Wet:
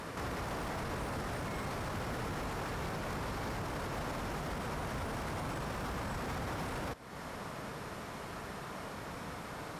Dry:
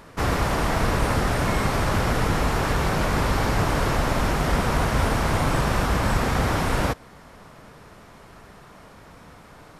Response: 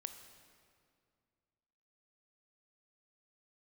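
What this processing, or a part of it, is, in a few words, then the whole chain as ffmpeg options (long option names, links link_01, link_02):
podcast mastering chain: -af "highpass=frequency=84:poles=1,deesser=0.75,acompressor=threshold=-38dB:ratio=3,alimiter=level_in=10.5dB:limit=-24dB:level=0:latency=1:release=14,volume=-10.5dB,volume=4.5dB" -ar 44100 -c:a libmp3lame -b:a 128k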